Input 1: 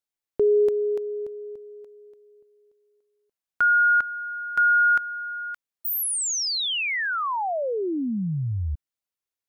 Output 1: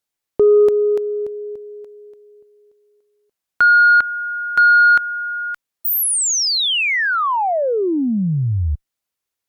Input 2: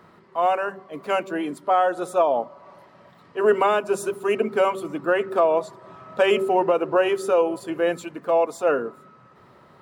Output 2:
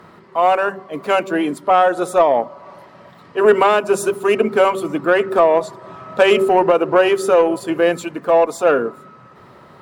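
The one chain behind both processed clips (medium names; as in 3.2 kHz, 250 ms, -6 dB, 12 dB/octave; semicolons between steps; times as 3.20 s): in parallel at +2 dB: peak limiter -18 dBFS; on the sum: Chebyshev shaper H 3 -21 dB, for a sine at -5.5 dBFS; trim +3.5 dB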